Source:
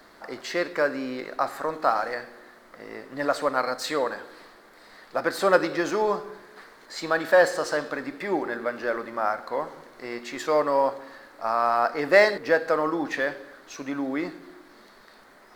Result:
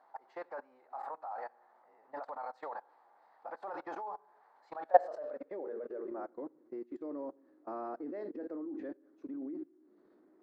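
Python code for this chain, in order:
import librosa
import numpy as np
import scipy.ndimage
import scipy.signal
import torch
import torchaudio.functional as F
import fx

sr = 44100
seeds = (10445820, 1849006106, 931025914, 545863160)

y = fx.filter_sweep_bandpass(x, sr, from_hz=830.0, to_hz=320.0, start_s=7.05, end_s=9.54, q=6.8)
y = fx.level_steps(y, sr, step_db=24)
y = fx.stretch_vocoder(y, sr, factor=0.67)
y = y * librosa.db_to_amplitude(8.0)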